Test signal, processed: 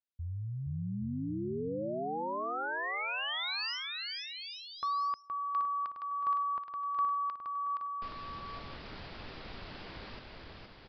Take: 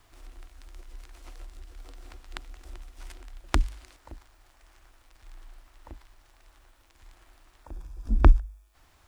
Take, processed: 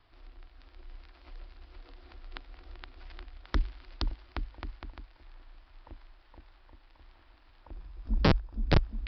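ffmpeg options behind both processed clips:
-af "aecho=1:1:470|822.5|1087|1285|1434:0.631|0.398|0.251|0.158|0.1,aresample=11025,aeval=exprs='(mod(3.55*val(0)+1,2)-1)/3.55':c=same,aresample=44100,volume=-4.5dB"

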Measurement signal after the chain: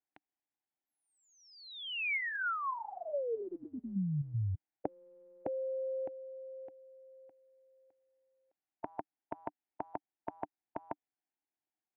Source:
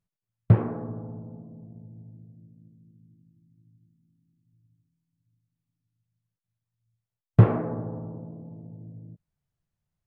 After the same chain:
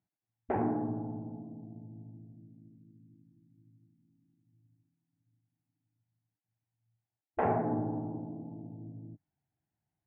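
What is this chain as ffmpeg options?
-af "highpass=110,equalizer=f=170:t=q:w=4:g=-5,equalizer=f=300:t=q:w=4:g=9,equalizer=f=510:t=q:w=4:g=-9,equalizer=f=780:t=q:w=4:g=9,equalizer=f=1.2k:t=q:w=4:g=-10,lowpass=f=2.2k:w=0.5412,lowpass=f=2.2k:w=1.3066,afftfilt=real='re*lt(hypot(re,im),0.355)':imag='im*lt(hypot(re,im),0.355)':win_size=1024:overlap=0.75"

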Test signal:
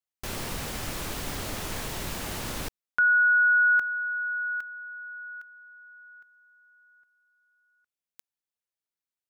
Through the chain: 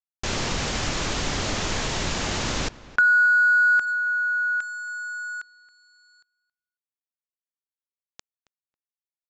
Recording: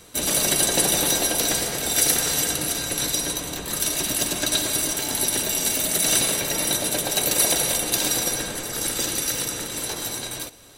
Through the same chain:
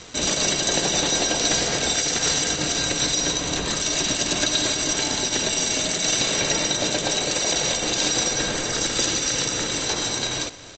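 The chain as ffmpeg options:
-filter_complex "[0:a]highshelf=f=2.7k:g=3,asplit=2[a][b];[b]acompressor=threshold=-31dB:ratio=10:attack=65:release=152:knee=1:detection=rms,volume=2.5dB[c];[a][c]amix=inputs=2:normalize=0,alimiter=limit=-8dB:level=0:latency=1:release=57,acrusher=bits=5:mix=0:aa=0.5,asplit=2[d][e];[e]adelay=273,lowpass=f=2.5k:p=1,volume=-18dB,asplit=2[f][g];[g]adelay=273,lowpass=f=2.5k:p=1,volume=0.15[h];[f][h]amix=inputs=2:normalize=0[i];[d][i]amix=inputs=2:normalize=0,aresample=16000,aresample=44100"

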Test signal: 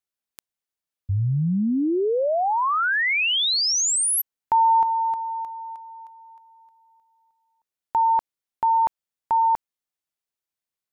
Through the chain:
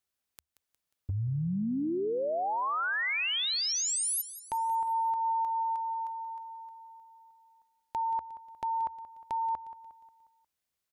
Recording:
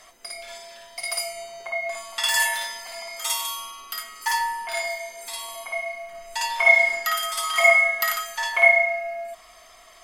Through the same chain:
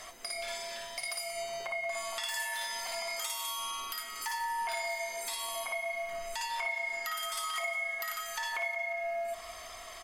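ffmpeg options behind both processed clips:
-filter_complex "[0:a]equalizer=f=75:t=o:w=0.41:g=8,acompressor=threshold=-32dB:ratio=16:attack=0.41:release=270:knee=6:detection=rms,asplit=2[a][b];[b]aecho=0:1:179|358|537|716|895:0.188|0.0923|0.0452|0.0222|0.0109[c];[a][c]amix=inputs=2:normalize=0,volume=3.5dB"

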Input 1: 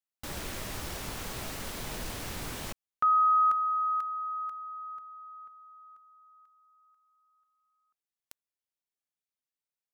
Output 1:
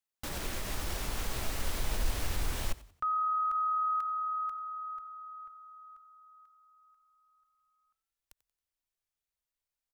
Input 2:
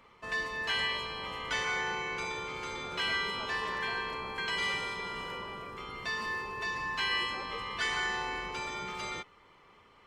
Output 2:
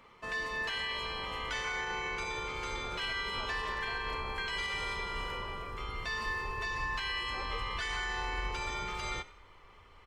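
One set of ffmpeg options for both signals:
-filter_complex "[0:a]alimiter=level_in=4dB:limit=-24dB:level=0:latency=1:release=70,volume=-4dB,asplit=4[a][b][c][d];[b]adelay=91,afreqshift=38,volume=-19dB[e];[c]adelay=182,afreqshift=76,volume=-27.9dB[f];[d]adelay=273,afreqshift=114,volume=-36.7dB[g];[a][e][f][g]amix=inputs=4:normalize=0,asubboost=boost=7.5:cutoff=68,volume=1dB"

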